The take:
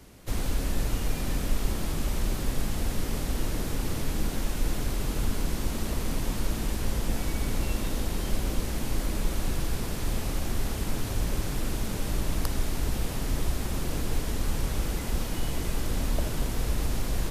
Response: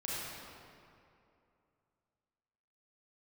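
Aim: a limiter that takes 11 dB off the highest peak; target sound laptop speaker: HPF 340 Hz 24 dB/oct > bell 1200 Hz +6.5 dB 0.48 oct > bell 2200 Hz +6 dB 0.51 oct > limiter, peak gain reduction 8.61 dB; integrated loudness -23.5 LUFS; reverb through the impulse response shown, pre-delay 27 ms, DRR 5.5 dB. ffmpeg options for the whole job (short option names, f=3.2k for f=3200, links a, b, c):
-filter_complex "[0:a]alimiter=limit=-22dB:level=0:latency=1,asplit=2[a][b];[1:a]atrim=start_sample=2205,adelay=27[c];[b][c]afir=irnorm=-1:irlink=0,volume=-9dB[d];[a][d]amix=inputs=2:normalize=0,highpass=f=340:w=0.5412,highpass=f=340:w=1.3066,equalizer=f=1.2k:t=o:w=0.48:g=6.5,equalizer=f=2.2k:t=o:w=0.51:g=6,volume=15dB,alimiter=limit=-15dB:level=0:latency=1"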